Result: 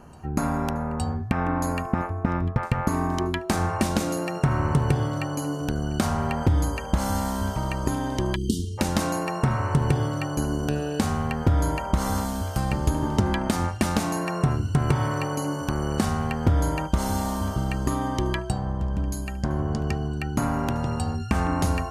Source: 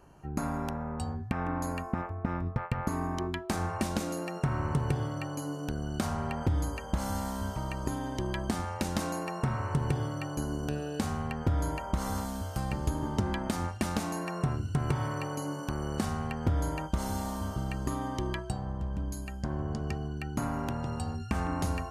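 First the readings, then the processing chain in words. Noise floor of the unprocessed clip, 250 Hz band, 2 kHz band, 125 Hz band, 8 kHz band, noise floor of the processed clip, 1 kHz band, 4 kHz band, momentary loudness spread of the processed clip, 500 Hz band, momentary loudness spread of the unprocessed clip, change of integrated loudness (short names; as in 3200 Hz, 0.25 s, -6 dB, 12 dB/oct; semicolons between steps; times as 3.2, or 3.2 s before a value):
-40 dBFS, +7.5 dB, +7.5 dB, +7.5 dB, +7.5 dB, -33 dBFS, +7.5 dB, +7.5 dB, 5 LU, +7.5 dB, 5 LU, +7.5 dB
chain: reverse echo 0.865 s -23.5 dB; spectral delete 8.35–8.78, 460–2800 Hz; gain +7.5 dB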